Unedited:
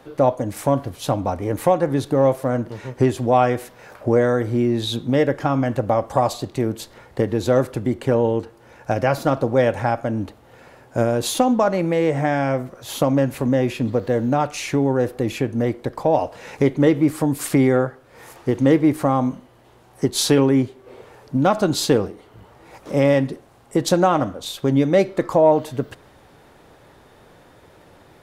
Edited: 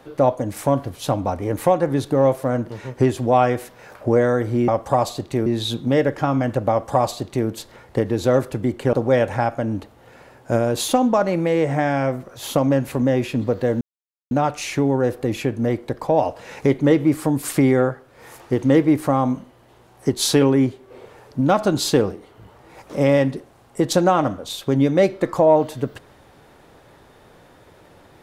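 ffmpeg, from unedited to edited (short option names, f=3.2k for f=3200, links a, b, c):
-filter_complex "[0:a]asplit=5[a][b][c][d][e];[a]atrim=end=4.682[f];[b]atrim=start=5.918:end=6.702[g];[c]atrim=start=4.678:end=8.152[h];[d]atrim=start=9.388:end=14.27,asetpts=PTS-STARTPTS,afade=t=out:st=4.878:d=0.004:c=hsin,apad=pad_dur=0.5[i];[e]atrim=start=14.27,asetpts=PTS-STARTPTS,afade=t=in:d=0.004:c=hsin[j];[f][g]acrossfade=d=0.004:c1=hsin:c2=hsin[k];[k][h]acrossfade=d=0.004:c1=hsin:c2=hsin[l];[i][j]concat=n=2:v=0:a=1[m];[l][m]acrossfade=d=0.004:c1=hsin:c2=hsin"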